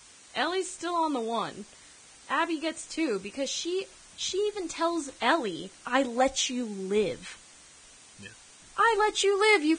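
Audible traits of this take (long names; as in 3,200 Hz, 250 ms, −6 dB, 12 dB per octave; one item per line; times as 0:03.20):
a quantiser's noise floor 8 bits, dither triangular
Ogg Vorbis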